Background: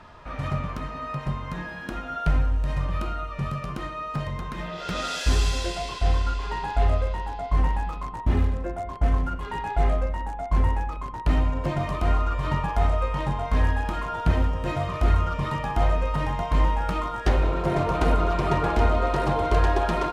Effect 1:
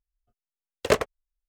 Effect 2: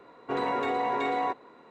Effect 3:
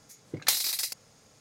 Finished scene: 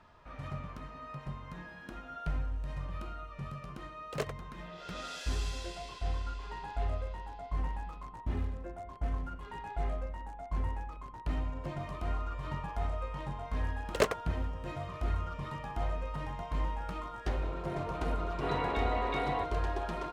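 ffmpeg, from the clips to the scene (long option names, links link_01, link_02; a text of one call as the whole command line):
ffmpeg -i bed.wav -i cue0.wav -i cue1.wav -filter_complex "[1:a]asplit=2[link_01][link_02];[0:a]volume=-12.5dB[link_03];[2:a]lowpass=frequency=3500:width_type=q:width=2.1[link_04];[link_01]atrim=end=1.48,asetpts=PTS-STARTPTS,volume=-15dB,afade=type=in:duration=0.004:curve=hsin,afade=type=out:start_time=1.476:duration=0.004:curve=hsin,adelay=3280[link_05];[link_02]atrim=end=1.48,asetpts=PTS-STARTPTS,volume=-6.5dB,afade=type=in:duration=0.004:curve=hsin,afade=type=out:start_time=1.476:duration=0.004:curve=hsin,adelay=13100[link_06];[link_04]atrim=end=1.7,asetpts=PTS-STARTPTS,volume=-7dB,afade=type=in:duration=0.004:curve=hsin,afade=type=out:start_time=1.696:duration=0.004:curve=hsin,adelay=799092S[link_07];[link_03][link_05][link_06][link_07]amix=inputs=4:normalize=0" out.wav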